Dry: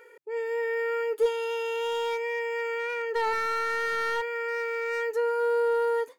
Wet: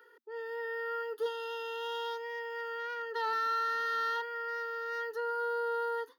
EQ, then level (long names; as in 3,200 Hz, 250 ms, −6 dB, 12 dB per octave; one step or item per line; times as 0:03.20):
Chebyshev high-pass filter 230 Hz, order 10
phaser with its sweep stopped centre 2,300 Hz, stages 6
−1.5 dB